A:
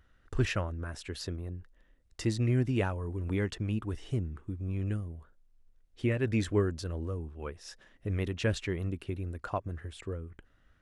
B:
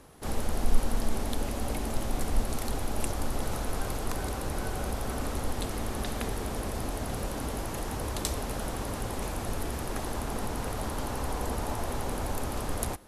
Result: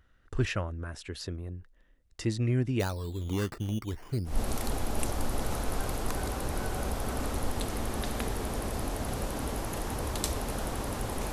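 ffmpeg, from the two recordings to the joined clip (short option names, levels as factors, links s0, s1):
-filter_complex "[0:a]asplit=3[s0][s1][s2];[s0]afade=t=out:st=2.79:d=0.02[s3];[s1]acrusher=samples=8:mix=1:aa=0.000001:lfo=1:lforange=12.8:lforate=0.35,afade=t=in:st=2.79:d=0.02,afade=t=out:st=4.42:d=0.02[s4];[s2]afade=t=in:st=4.42:d=0.02[s5];[s3][s4][s5]amix=inputs=3:normalize=0,apad=whole_dur=11.32,atrim=end=11.32,atrim=end=4.42,asetpts=PTS-STARTPTS[s6];[1:a]atrim=start=2.25:end=9.33,asetpts=PTS-STARTPTS[s7];[s6][s7]acrossfade=d=0.18:c1=tri:c2=tri"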